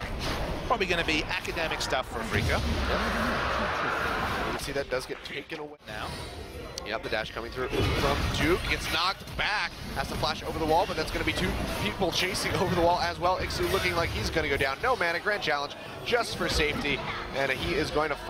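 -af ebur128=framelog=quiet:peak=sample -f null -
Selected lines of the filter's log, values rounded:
Integrated loudness:
  I:         -28.3 LUFS
  Threshold: -38.4 LUFS
Loudness range:
  LRA:         5.3 LU
  Threshold: -48.4 LUFS
  LRA low:   -32.2 LUFS
  LRA high:  -26.8 LUFS
Sample peak:
  Peak:      -12.9 dBFS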